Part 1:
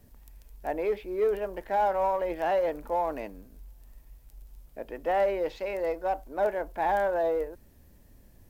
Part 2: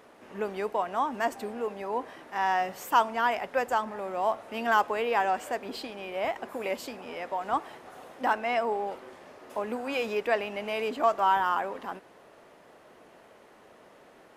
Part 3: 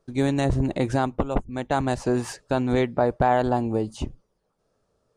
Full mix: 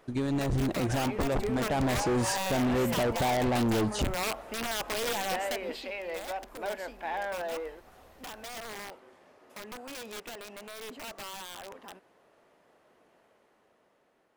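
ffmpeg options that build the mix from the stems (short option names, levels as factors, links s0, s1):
-filter_complex "[0:a]equalizer=f=3000:t=o:w=2.5:g=13.5,acompressor=threshold=0.0158:ratio=1.5,adelay=250,volume=0.251[s0];[1:a]alimiter=limit=0.075:level=0:latency=1:release=75,aeval=exprs='(mod(20*val(0)+1,2)-1)/20':c=same,volume=0.531,afade=t=out:st=5.45:d=0.47:silence=0.316228[s1];[2:a]alimiter=limit=0.126:level=0:latency=1:release=41,volume=1[s2];[s0][s1][s2]amix=inputs=3:normalize=0,dynaudnorm=f=280:g=9:m=2,asoftclip=type=hard:threshold=0.0596"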